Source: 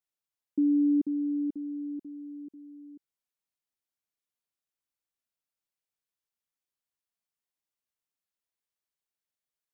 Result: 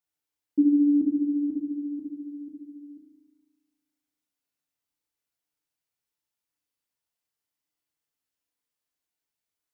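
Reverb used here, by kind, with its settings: FDN reverb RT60 1.1 s, low-frequency decay 1.4×, high-frequency decay 0.95×, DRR -1 dB

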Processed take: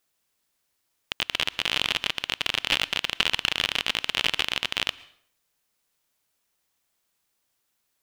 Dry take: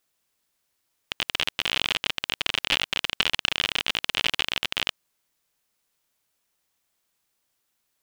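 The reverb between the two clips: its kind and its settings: plate-style reverb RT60 0.58 s, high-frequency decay 0.85×, pre-delay 0.1 s, DRR 20 dB

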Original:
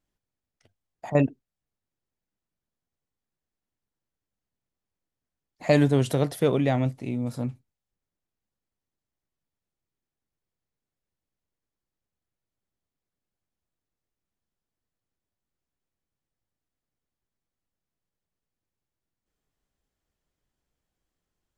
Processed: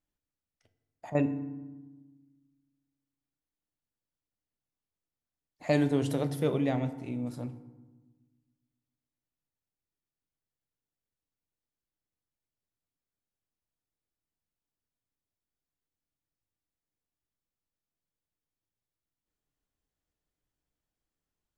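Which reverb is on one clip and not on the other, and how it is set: FDN reverb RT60 1.2 s, low-frequency decay 1.55×, high-frequency decay 0.55×, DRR 9.5 dB; gain -7 dB

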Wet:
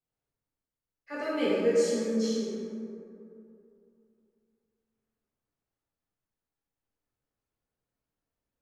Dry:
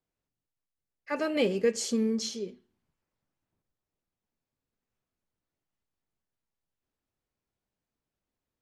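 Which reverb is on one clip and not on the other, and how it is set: plate-style reverb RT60 2.7 s, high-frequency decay 0.35×, DRR -9.5 dB; gain -10.5 dB

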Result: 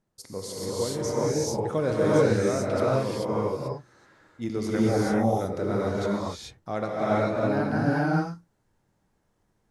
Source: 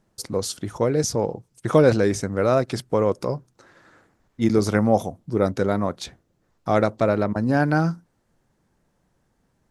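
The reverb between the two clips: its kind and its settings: non-linear reverb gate 0.46 s rising, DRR -7.5 dB; gain -11.5 dB

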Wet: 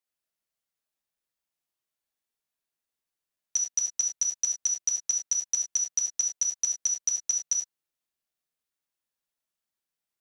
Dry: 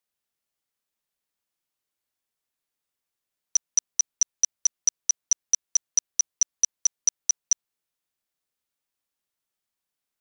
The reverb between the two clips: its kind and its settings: non-linear reverb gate 0.12 s flat, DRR 1 dB; gain -6 dB

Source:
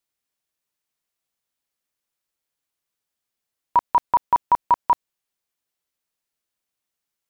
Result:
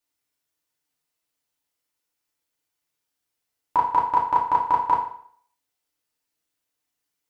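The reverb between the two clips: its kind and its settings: FDN reverb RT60 0.58 s, low-frequency decay 0.9×, high-frequency decay 0.95×, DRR -3.5 dB; gain -3 dB

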